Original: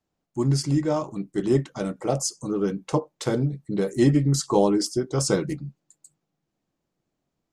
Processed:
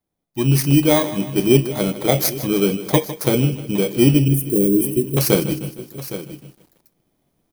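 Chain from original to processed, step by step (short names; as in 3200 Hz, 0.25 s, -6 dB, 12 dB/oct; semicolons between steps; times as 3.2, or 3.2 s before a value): FFT order left unsorted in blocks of 16 samples; 4.28–5.17 elliptic band-stop 380–8700 Hz; echo 0.813 s -17.5 dB; AGC gain up to 12.5 dB; lo-fi delay 0.154 s, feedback 55%, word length 7-bit, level -14 dB; gain -1 dB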